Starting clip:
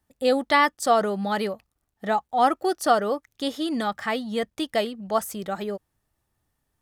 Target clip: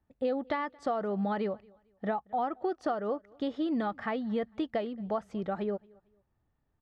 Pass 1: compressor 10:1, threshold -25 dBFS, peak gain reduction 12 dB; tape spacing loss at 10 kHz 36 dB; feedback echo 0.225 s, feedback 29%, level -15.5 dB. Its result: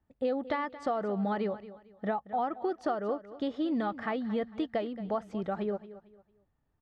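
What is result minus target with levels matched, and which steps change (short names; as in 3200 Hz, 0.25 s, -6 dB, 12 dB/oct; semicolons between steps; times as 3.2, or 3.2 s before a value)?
echo-to-direct +11 dB
change: feedback echo 0.225 s, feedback 29%, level -26.5 dB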